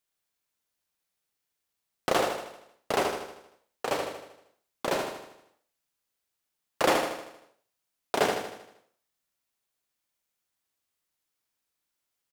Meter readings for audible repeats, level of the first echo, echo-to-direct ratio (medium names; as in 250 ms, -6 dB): 6, -5.5 dB, -4.0 dB